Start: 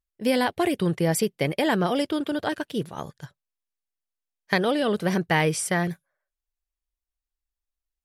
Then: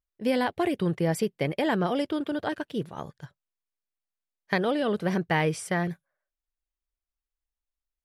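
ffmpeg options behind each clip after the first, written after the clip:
-af "highshelf=f=4400:g=-9,volume=0.75"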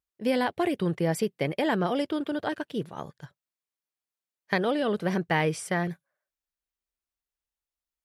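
-af "highpass=f=93:p=1"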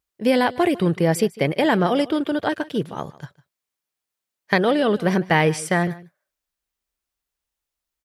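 -af "aecho=1:1:152:0.1,volume=2.37"

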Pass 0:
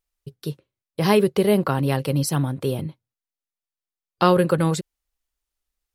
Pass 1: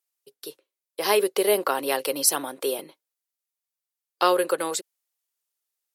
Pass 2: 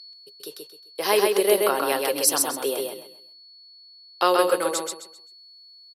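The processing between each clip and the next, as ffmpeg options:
-af "dynaudnorm=f=230:g=11:m=3.76,highpass=f=370:w=0.5412,highpass=f=370:w=1.3066,aemphasis=mode=production:type=cd,volume=0.631"
-af "aeval=exprs='val(0)+0.00794*sin(2*PI*4400*n/s)':c=same,aecho=1:1:131|262|393|524:0.708|0.198|0.0555|0.0155,aresample=32000,aresample=44100"

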